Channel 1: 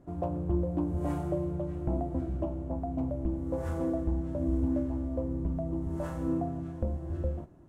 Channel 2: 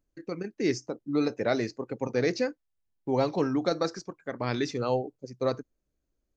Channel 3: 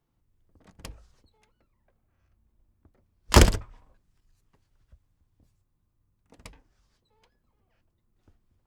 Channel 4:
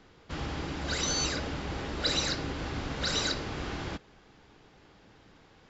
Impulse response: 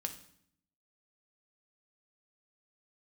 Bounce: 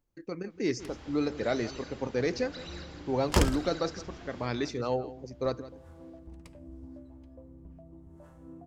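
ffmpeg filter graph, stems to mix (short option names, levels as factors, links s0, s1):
-filter_complex "[0:a]adelay=2200,volume=0.126[s0];[1:a]asoftclip=type=tanh:threshold=0.299,volume=0.75,asplit=2[s1][s2];[s2]volume=0.15[s3];[2:a]volume=0.224,asplit=2[s4][s5];[s5]volume=0.631[s6];[3:a]acrossover=split=3700[s7][s8];[s8]acompressor=threshold=0.00447:ratio=4:attack=1:release=60[s9];[s7][s9]amix=inputs=2:normalize=0,highshelf=f=6600:g=7,adelay=500,volume=0.2,asplit=2[s10][s11];[s11]volume=0.355[s12];[4:a]atrim=start_sample=2205[s13];[s6][s13]afir=irnorm=-1:irlink=0[s14];[s3][s12]amix=inputs=2:normalize=0,aecho=0:1:167:1[s15];[s0][s1][s4][s10][s14][s15]amix=inputs=6:normalize=0"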